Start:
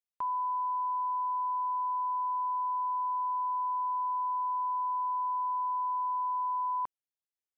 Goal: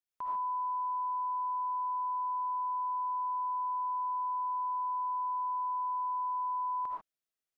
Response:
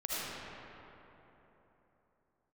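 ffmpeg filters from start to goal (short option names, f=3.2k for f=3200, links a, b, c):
-filter_complex "[0:a]equalizer=f=900:w=5.4:g=-3.5[a];[1:a]atrim=start_sample=2205,afade=t=out:st=0.2:d=0.01,atrim=end_sample=9261[b];[a][b]afir=irnorm=-1:irlink=0"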